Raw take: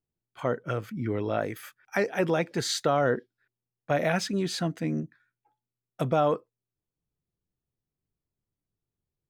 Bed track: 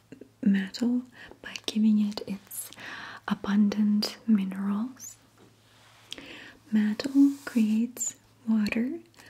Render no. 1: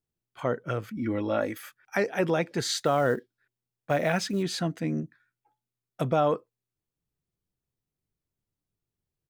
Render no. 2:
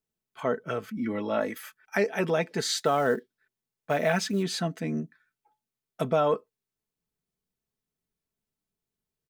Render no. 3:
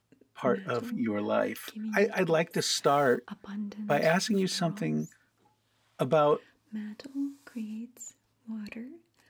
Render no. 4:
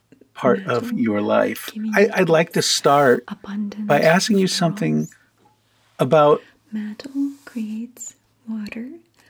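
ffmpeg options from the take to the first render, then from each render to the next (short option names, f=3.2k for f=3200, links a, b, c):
-filter_complex "[0:a]asplit=3[a][b][c];[a]afade=t=out:st=0.95:d=0.02[d];[b]aecho=1:1:3.6:0.65,afade=t=in:st=0.95:d=0.02,afade=t=out:st=1.62:d=0.02[e];[c]afade=t=in:st=1.62:d=0.02[f];[d][e][f]amix=inputs=3:normalize=0,asettb=1/sr,asplit=3[g][h][i];[g]atrim=end=2.774[j];[h]atrim=start=2.77:end=4.43,asetpts=PTS-STARTPTS,afade=t=in:d=0.004:c=qsin,afade=t=out:st=1.656:d=0.004:c=qsin,acrusher=bits=8:mode=log:mix=0:aa=0.000001[k];[i]atrim=start=4.426[l];[j][k]acrossfade=d=0.004:c1=hsin:c2=qsin[m];[m][l]acrossfade=d=0.004:c1=qsin:c2=hsin"
-af "lowshelf=f=120:g=-7,aecho=1:1:4.6:0.48"
-filter_complex "[1:a]volume=-13.5dB[a];[0:a][a]amix=inputs=2:normalize=0"
-af "volume=10.5dB,alimiter=limit=-2dB:level=0:latency=1"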